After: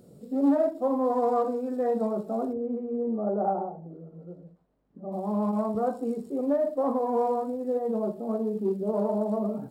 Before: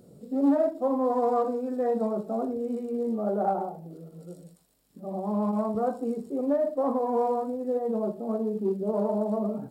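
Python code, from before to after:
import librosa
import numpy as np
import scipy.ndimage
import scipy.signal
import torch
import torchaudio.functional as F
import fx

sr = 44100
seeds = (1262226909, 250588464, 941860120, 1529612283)

y = fx.lowpass(x, sr, hz=1200.0, slope=12, at=(2.52, 5.11), fade=0.02)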